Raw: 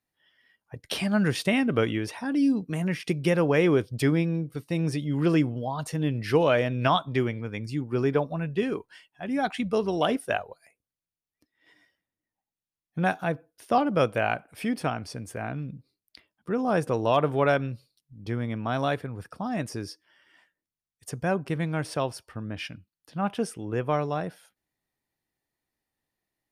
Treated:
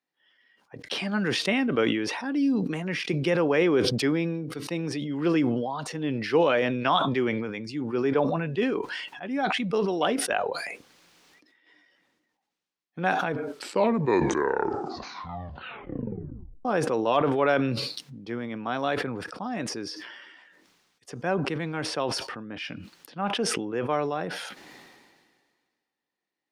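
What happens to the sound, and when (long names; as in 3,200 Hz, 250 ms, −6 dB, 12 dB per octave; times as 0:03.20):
0:13.21: tape stop 3.44 s
whole clip: three-way crossover with the lows and the highs turned down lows −21 dB, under 190 Hz, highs −18 dB, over 6,400 Hz; notch filter 640 Hz, Q 12; level that may fall only so fast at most 33 dB per second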